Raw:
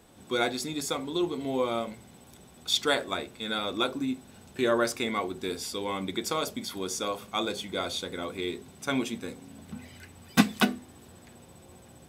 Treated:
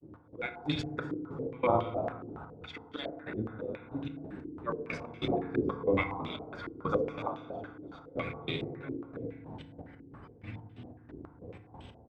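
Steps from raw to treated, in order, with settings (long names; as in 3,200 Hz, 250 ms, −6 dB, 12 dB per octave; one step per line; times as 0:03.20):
sub-octave generator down 1 octave, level +1 dB
high-pass filter 43 Hz
volume swells 533 ms
granular cloud, pitch spread up and down by 0 semitones
echo with shifted repeats 145 ms, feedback 56%, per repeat +62 Hz, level −11.5 dB
gate pattern "xx..xx.." 184 BPM −24 dB
feedback delay network reverb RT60 1.6 s, low-frequency decay 1.3×, high-frequency decay 0.3×, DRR 5.5 dB
low-pass on a step sequencer 7.2 Hz 360–3,100 Hz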